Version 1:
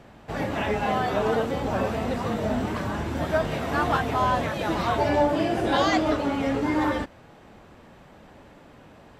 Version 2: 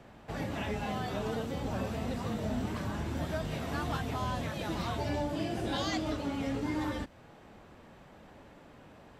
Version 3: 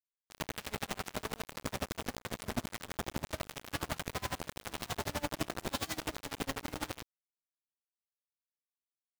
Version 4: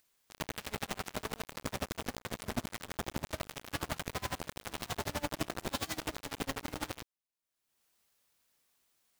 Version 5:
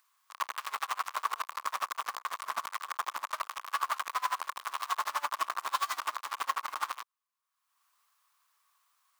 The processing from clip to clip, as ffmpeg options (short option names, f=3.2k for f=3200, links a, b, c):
-filter_complex "[0:a]acrossover=split=250|3000[a][b][c];[b]acompressor=threshold=-38dB:ratio=2[d];[a][d][c]amix=inputs=3:normalize=0,volume=-4.5dB"
-af "acrusher=bits=4:mix=0:aa=0.000001,aeval=exprs='val(0)*pow(10,-25*(0.5-0.5*cos(2*PI*12*n/s))/20)':c=same"
-af "acompressor=mode=upward:threshold=-56dB:ratio=2.5"
-af "highpass=f=1.1k:t=q:w=7.3"